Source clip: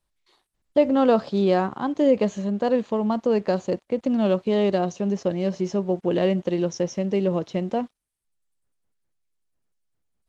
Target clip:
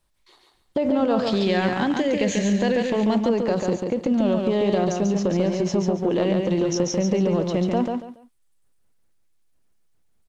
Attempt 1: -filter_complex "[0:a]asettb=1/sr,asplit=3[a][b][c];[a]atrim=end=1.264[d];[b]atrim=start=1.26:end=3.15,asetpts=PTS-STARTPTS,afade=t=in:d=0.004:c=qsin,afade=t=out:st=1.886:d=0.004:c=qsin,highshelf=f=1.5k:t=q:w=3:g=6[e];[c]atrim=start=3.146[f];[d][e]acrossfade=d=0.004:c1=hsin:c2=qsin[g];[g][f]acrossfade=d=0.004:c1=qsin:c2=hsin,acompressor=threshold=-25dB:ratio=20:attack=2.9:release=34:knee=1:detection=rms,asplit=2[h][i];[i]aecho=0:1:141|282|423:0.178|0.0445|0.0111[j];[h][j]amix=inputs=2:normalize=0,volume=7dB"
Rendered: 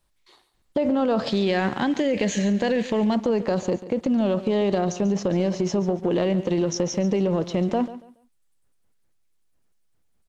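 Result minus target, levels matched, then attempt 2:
echo-to-direct -11 dB
-filter_complex "[0:a]asettb=1/sr,asplit=3[a][b][c];[a]atrim=end=1.264[d];[b]atrim=start=1.26:end=3.15,asetpts=PTS-STARTPTS,afade=t=in:d=0.004:c=qsin,afade=t=out:st=1.886:d=0.004:c=qsin,highshelf=f=1.5k:t=q:w=3:g=6[e];[c]atrim=start=3.146[f];[d][e]acrossfade=d=0.004:c1=hsin:c2=qsin[g];[g][f]acrossfade=d=0.004:c1=qsin:c2=hsin,acompressor=threshold=-25dB:ratio=20:attack=2.9:release=34:knee=1:detection=rms,asplit=2[h][i];[i]aecho=0:1:141|282|423:0.631|0.158|0.0394[j];[h][j]amix=inputs=2:normalize=0,volume=7dB"

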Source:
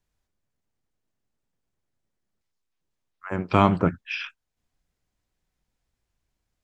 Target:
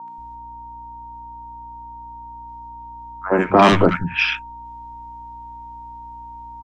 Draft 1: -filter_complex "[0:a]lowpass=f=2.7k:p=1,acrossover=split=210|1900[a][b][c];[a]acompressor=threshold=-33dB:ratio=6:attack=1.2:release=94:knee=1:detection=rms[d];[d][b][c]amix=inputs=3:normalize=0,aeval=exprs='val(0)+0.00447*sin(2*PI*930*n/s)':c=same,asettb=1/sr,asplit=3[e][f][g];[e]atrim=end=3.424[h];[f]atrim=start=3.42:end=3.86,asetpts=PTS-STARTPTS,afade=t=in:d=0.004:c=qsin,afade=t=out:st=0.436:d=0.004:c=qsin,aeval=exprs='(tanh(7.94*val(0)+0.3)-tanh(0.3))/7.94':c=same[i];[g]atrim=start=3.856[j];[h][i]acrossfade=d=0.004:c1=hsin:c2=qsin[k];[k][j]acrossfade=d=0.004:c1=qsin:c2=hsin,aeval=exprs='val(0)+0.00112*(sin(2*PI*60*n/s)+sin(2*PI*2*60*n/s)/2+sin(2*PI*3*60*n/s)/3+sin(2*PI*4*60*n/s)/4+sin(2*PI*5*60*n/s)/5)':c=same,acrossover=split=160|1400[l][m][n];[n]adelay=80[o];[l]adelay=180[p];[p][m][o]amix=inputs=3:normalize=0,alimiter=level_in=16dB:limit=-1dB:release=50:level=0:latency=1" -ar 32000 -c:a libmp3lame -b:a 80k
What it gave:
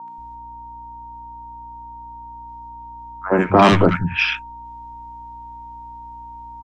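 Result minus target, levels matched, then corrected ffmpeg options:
compressor: peak gain reduction -10 dB
-filter_complex "[0:a]lowpass=f=2.7k:p=1,acrossover=split=210|1900[a][b][c];[a]acompressor=threshold=-45dB:ratio=6:attack=1.2:release=94:knee=1:detection=rms[d];[d][b][c]amix=inputs=3:normalize=0,aeval=exprs='val(0)+0.00447*sin(2*PI*930*n/s)':c=same,asettb=1/sr,asplit=3[e][f][g];[e]atrim=end=3.424[h];[f]atrim=start=3.42:end=3.86,asetpts=PTS-STARTPTS,afade=t=in:d=0.004:c=qsin,afade=t=out:st=0.436:d=0.004:c=qsin,aeval=exprs='(tanh(7.94*val(0)+0.3)-tanh(0.3))/7.94':c=same[i];[g]atrim=start=3.856[j];[h][i]acrossfade=d=0.004:c1=hsin:c2=qsin[k];[k][j]acrossfade=d=0.004:c1=qsin:c2=hsin,aeval=exprs='val(0)+0.00112*(sin(2*PI*60*n/s)+sin(2*PI*2*60*n/s)/2+sin(2*PI*3*60*n/s)/3+sin(2*PI*4*60*n/s)/4+sin(2*PI*5*60*n/s)/5)':c=same,acrossover=split=160|1400[l][m][n];[n]adelay=80[o];[l]adelay=180[p];[p][m][o]amix=inputs=3:normalize=0,alimiter=level_in=16dB:limit=-1dB:release=50:level=0:latency=1" -ar 32000 -c:a libmp3lame -b:a 80k

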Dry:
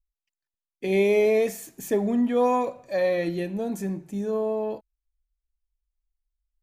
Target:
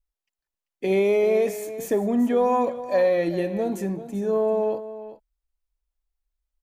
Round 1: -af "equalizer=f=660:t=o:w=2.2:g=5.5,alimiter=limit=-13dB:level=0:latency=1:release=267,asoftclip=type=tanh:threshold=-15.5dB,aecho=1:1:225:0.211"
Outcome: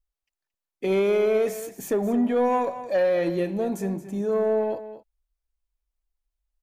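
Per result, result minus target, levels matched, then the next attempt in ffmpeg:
soft clip: distortion +15 dB; echo 0.164 s early
-af "equalizer=f=660:t=o:w=2.2:g=5.5,alimiter=limit=-13dB:level=0:latency=1:release=267,asoftclip=type=tanh:threshold=-7dB,aecho=1:1:225:0.211"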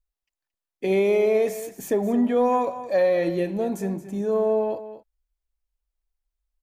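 echo 0.164 s early
-af "equalizer=f=660:t=o:w=2.2:g=5.5,alimiter=limit=-13dB:level=0:latency=1:release=267,asoftclip=type=tanh:threshold=-7dB,aecho=1:1:389:0.211"

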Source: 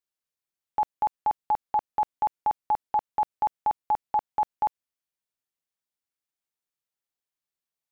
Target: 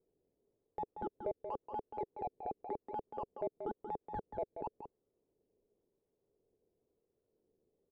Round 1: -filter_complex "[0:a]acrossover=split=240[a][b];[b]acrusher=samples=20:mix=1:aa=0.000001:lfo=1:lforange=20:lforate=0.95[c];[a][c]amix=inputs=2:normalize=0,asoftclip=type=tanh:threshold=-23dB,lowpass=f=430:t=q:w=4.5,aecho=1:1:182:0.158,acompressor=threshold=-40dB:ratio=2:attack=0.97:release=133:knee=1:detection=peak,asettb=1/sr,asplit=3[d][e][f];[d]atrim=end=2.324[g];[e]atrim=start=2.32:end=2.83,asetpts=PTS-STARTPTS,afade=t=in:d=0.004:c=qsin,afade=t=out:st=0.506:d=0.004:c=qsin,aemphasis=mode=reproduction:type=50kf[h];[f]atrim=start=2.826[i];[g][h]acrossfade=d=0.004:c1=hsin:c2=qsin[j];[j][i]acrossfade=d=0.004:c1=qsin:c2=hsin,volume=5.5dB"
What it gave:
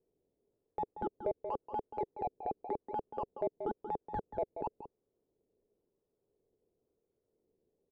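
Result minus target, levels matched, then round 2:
compressor: peak gain reduction -4 dB
-filter_complex "[0:a]acrossover=split=240[a][b];[b]acrusher=samples=20:mix=1:aa=0.000001:lfo=1:lforange=20:lforate=0.95[c];[a][c]amix=inputs=2:normalize=0,asoftclip=type=tanh:threshold=-23dB,lowpass=f=430:t=q:w=4.5,aecho=1:1:182:0.158,acompressor=threshold=-47.5dB:ratio=2:attack=0.97:release=133:knee=1:detection=peak,asettb=1/sr,asplit=3[d][e][f];[d]atrim=end=2.324[g];[e]atrim=start=2.32:end=2.83,asetpts=PTS-STARTPTS,afade=t=in:d=0.004:c=qsin,afade=t=out:st=0.506:d=0.004:c=qsin,aemphasis=mode=reproduction:type=50kf[h];[f]atrim=start=2.826[i];[g][h]acrossfade=d=0.004:c1=hsin:c2=qsin[j];[j][i]acrossfade=d=0.004:c1=qsin:c2=hsin,volume=5.5dB"

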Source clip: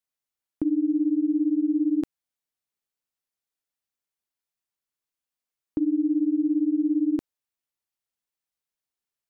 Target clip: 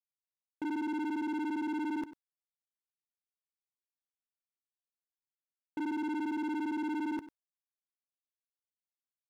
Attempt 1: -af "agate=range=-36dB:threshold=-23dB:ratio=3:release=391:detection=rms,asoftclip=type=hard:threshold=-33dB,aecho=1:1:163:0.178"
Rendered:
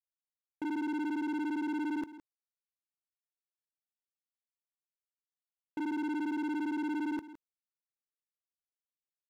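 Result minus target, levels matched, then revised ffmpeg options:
echo 66 ms late
-af "agate=range=-36dB:threshold=-23dB:ratio=3:release=391:detection=rms,asoftclip=type=hard:threshold=-33dB,aecho=1:1:97:0.178"

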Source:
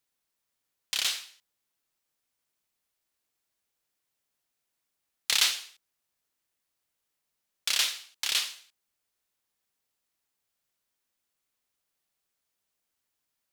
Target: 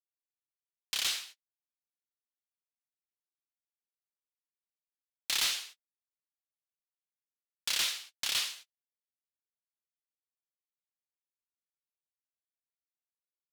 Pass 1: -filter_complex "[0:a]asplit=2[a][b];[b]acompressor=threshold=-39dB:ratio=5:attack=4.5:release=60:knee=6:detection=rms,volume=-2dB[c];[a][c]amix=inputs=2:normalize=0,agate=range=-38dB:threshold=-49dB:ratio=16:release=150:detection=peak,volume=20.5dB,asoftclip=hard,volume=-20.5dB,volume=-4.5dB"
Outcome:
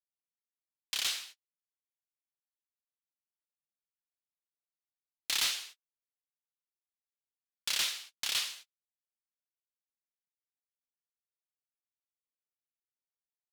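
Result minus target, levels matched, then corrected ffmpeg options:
compressor: peak gain reduction +7 dB
-filter_complex "[0:a]asplit=2[a][b];[b]acompressor=threshold=-30dB:ratio=5:attack=4.5:release=60:knee=6:detection=rms,volume=-2dB[c];[a][c]amix=inputs=2:normalize=0,agate=range=-38dB:threshold=-49dB:ratio=16:release=150:detection=peak,volume=20.5dB,asoftclip=hard,volume=-20.5dB,volume=-4.5dB"

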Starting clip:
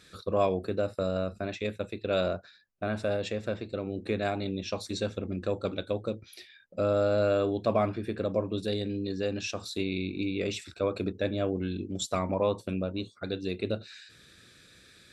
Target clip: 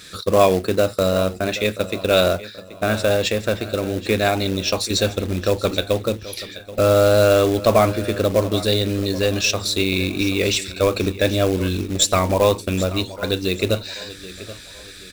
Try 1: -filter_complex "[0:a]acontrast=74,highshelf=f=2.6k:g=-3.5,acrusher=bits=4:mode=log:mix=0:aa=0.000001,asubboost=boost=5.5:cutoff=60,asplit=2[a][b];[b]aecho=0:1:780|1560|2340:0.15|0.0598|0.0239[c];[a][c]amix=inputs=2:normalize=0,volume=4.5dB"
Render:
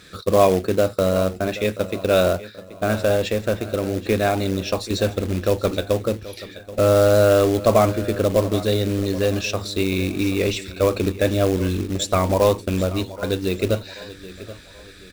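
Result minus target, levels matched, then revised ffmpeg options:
4000 Hz band -5.5 dB
-filter_complex "[0:a]acontrast=74,highshelf=f=2.6k:g=7.5,acrusher=bits=4:mode=log:mix=0:aa=0.000001,asubboost=boost=5.5:cutoff=60,asplit=2[a][b];[b]aecho=0:1:780|1560|2340:0.15|0.0598|0.0239[c];[a][c]amix=inputs=2:normalize=0,volume=4.5dB"

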